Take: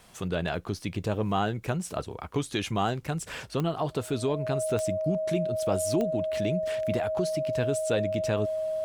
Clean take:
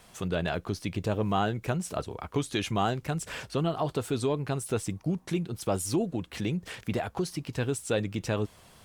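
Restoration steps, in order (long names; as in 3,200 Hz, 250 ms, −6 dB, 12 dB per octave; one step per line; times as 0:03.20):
click removal
notch filter 630 Hz, Q 30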